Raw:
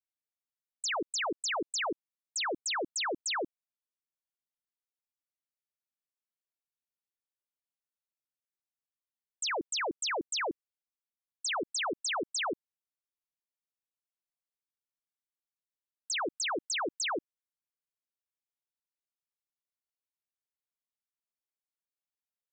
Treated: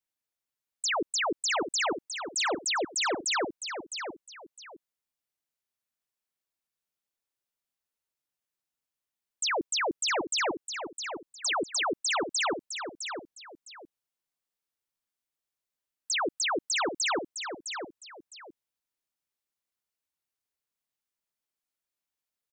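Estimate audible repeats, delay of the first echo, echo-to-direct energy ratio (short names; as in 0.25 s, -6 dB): 2, 0.659 s, -7.5 dB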